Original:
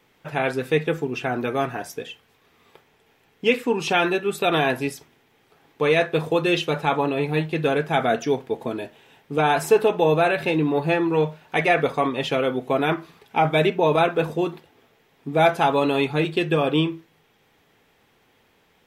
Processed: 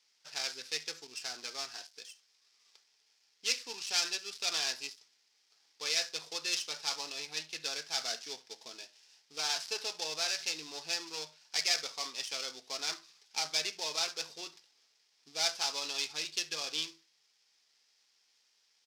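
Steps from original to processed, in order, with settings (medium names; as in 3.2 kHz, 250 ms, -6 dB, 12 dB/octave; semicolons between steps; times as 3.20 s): dead-time distortion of 0.11 ms; band-pass filter 5.1 kHz, Q 3.8; delay 70 ms -22.5 dB; trim +5.5 dB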